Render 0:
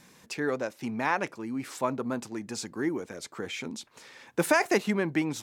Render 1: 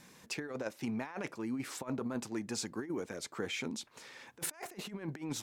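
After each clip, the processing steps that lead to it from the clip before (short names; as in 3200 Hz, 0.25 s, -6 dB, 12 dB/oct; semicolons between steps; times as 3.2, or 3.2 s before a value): negative-ratio compressor -32 dBFS, ratio -0.5; gain -5.5 dB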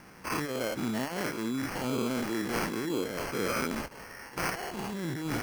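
spectral dilation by 0.12 s; sample-and-hold 12×; gain +1.5 dB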